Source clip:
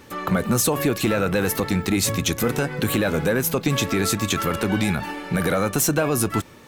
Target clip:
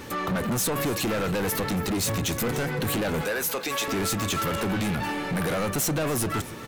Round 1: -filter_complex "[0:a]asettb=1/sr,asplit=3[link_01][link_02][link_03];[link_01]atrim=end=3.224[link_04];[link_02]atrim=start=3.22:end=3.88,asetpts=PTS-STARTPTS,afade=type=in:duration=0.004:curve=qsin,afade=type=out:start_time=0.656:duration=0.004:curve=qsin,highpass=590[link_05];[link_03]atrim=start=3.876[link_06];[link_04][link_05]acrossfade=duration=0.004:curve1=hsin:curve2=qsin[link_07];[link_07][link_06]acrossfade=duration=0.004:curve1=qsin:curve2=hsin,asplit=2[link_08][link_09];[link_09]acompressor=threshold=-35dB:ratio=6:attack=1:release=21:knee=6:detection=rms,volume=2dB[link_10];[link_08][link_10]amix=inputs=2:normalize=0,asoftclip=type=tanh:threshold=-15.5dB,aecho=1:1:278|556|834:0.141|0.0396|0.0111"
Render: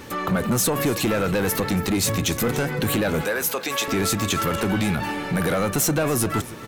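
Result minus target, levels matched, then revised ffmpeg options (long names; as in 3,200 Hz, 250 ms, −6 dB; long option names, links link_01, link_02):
soft clipping: distortion −7 dB
-filter_complex "[0:a]asettb=1/sr,asplit=3[link_01][link_02][link_03];[link_01]atrim=end=3.224[link_04];[link_02]atrim=start=3.22:end=3.88,asetpts=PTS-STARTPTS,afade=type=in:duration=0.004:curve=qsin,afade=type=out:start_time=0.656:duration=0.004:curve=qsin,highpass=590[link_05];[link_03]atrim=start=3.876[link_06];[link_04][link_05]acrossfade=duration=0.004:curve1=hsin:curve2=qsin[link_07];[link_07][link_06]acrossfade=duration=0.004:curve1=qsin:curve2=hsin,asplit=2[link_08][link_09];[link_09]acompressor=threshold=-35dB:ratio=6:attack=1:release=21:knee=6:detection=rms,volume=2dB[link_10];[link_08][link_10]amix=inputs=2:normalize=0,asoftclip=type=tanh:threshold=-23.5dB,aecho=1:1:278|556|834:0.141|0.0396|0.0111"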